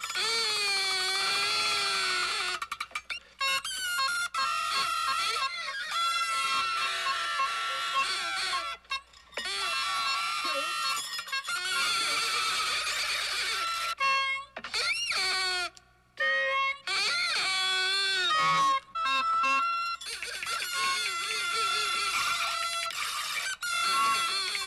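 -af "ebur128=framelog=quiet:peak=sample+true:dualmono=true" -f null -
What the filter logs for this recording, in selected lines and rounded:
Integrated loudness:
  I:         -24.8 LUFS
  Threshold: -34.9 LUFS
Loudness range:
  LRA:         3.6 LU
  Threshold: -45.0 LUFS
  LRA low:   -26.7 LUFS
  LRA high:  -23.1 LUFS
Sample peak:
  Peak:      -17.4 dBFS
True peak:
  Peak:      -17.4 dBFS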